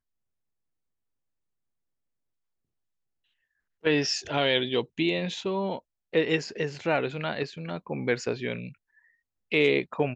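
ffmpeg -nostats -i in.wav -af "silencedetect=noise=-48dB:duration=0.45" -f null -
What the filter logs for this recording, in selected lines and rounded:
silence_start: 0.00
silence_end: 3.84 | silence_duration: 3.84
silence_start: 8.73
silence_end: 9.52 | silence_duration: 0.79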